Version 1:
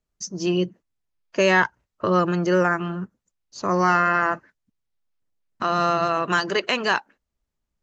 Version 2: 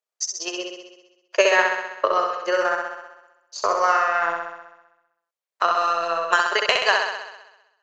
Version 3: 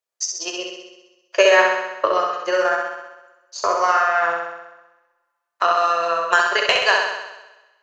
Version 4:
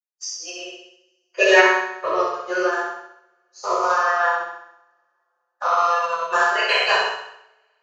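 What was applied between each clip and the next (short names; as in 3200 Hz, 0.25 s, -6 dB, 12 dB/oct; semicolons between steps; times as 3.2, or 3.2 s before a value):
steep high-pass 460 Hz 36 dB/oct; transient shaper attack +11 dB, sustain -10 dB; on a send: flutter echo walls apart 11.1 m, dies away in 1 s; on the sum: gain -3.5 dB
two-slope reverb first 0.33 s, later 1.8 s, from -27 dB, DRR 4.5 dB; gain +1 dB
bin magnitudes rounded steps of 30 dB; two-slope reverb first 0.75 s, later 3.4 s, from -28 dB, DRR -9 dB; upward expander 1.5:1, over -36 dBFS; gain -7 dB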